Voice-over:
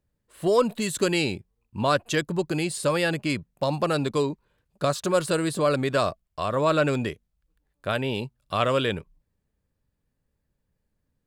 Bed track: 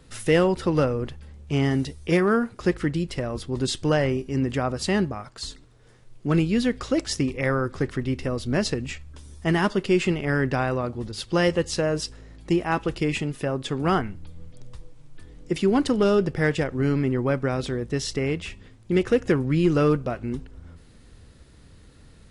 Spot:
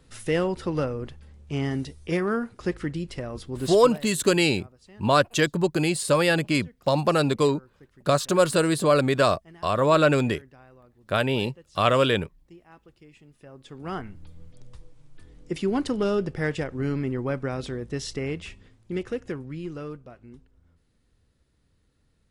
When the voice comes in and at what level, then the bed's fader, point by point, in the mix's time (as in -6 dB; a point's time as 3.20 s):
3.25 s, +3.0 dB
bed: 3.74 s -5 dB
4.09 s -27.5 dB
13.16 s -27.5 dB
14.21 s -4.5 dB
18.51 s -4.5 dB
19.99 s -17.5 dB